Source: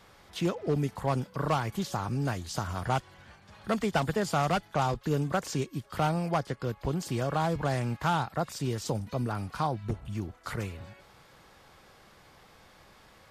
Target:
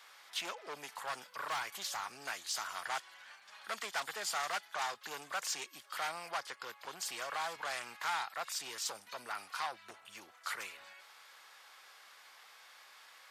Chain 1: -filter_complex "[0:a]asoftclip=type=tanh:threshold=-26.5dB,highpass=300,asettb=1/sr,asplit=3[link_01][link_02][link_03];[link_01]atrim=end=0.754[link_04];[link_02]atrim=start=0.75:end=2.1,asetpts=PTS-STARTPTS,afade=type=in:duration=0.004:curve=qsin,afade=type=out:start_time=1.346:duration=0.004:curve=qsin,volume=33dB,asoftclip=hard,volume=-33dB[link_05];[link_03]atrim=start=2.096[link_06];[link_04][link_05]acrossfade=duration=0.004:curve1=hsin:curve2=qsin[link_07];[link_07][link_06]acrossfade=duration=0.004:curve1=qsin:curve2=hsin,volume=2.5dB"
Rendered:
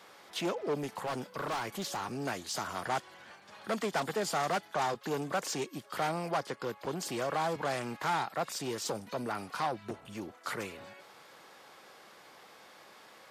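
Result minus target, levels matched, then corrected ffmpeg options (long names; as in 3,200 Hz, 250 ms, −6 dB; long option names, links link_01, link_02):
250 Hz band +17.0 dB
-filter_complex "[0:a]asoftclip=type=tanh:threshold=-26.5dB,highpass=1200,asettb=1/sr,asplit=3[link_01][link_02][link_03];[link_01]atrim=end=0.754[link_04];[link_02]atrim=start=0.75:end=2.1,asetpts=PTS-STARTPTS,afade=type=in:duration=0.004:curve=qsin,afade=type=out:start_time=1.346:duration=0.004:curve=qsin,volume=33dB,asoftclip=hard,volume=-33dB[link_05];[link_03]atrim=start=2.096[link_06];[link_04][link_05]acrossfade=duration=0.004:curve1=hsin:curve2=qsin[link_07];[link_07][link_06]acrossfade=duration=0.004:curve1=qsin:curve2=hsin,volume=2.5dB"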